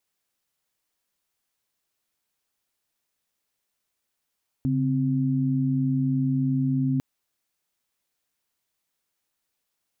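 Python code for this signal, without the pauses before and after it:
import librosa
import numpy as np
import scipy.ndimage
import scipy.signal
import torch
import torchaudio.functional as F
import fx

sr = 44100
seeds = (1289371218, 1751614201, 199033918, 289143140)

y = fx.chord(sr, length_s=2.35, notes=(49, 60), wave='sine', level_db=-23.5)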